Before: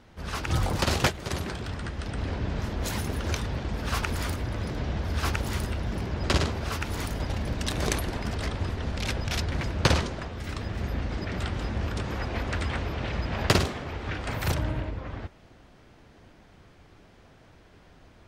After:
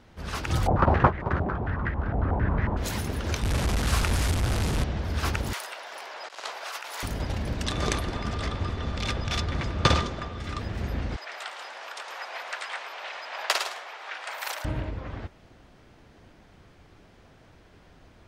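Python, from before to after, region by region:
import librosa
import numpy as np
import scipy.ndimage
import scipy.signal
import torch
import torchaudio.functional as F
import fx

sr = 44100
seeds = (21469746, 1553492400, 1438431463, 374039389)

y = fx.chain(x, sr, fx.low_shelf(hz=320.0, db=5.5),
    fx.filter_held_lowpass(hz=11.0, low_hz=740.0, high_hz=1900.0), at=(0.67, 2.77))
y = fx.chain(y, sr, fx.delta_mod(bps=64000, step_db=-23.0),
    fx.low_shelf(hz=120.0, db=7.5), at=(3.43, 4.84))
y = fx.chain(y, sr, fx.highpass(hz=640.0, slope=24),
    fx.over_compress(threshold_db=-35.0, ratio=-0.5), at=(5.53, 7.03))
y = fx.chain(y, sr, fx.lowpass(hz=7900.0, slope=12),
    fx.small_body(hz=(1200.0, 3500.0), ring_ms=100, db=15), at=(7.66, 10.59))
y = fx.chain(y, sr, fx.highpass(hz=670.0, slope=24),
    fx.echo_single(ms=109, db=-9.5), at=(11.16, 14.65))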